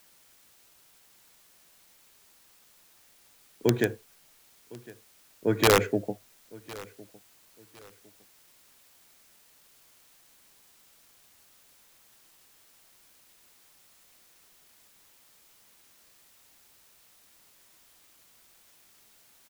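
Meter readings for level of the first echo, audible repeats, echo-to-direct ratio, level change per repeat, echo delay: -21.5 dB, 2, -21.0 dB, -10.5 dB, 1.058 s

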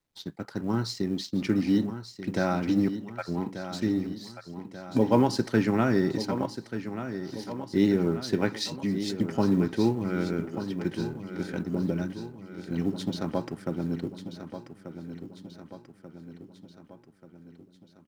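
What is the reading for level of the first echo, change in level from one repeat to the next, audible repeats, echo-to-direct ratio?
-10.5 dB, -5.0 dB, 5, -9.0 dB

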